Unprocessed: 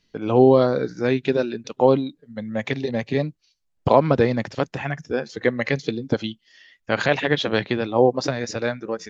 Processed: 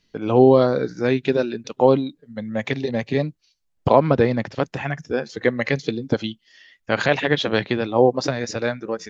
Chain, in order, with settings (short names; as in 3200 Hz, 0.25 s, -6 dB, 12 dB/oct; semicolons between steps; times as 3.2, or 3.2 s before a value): 3.89–4.65 air absorption 78 m; gain +1 dB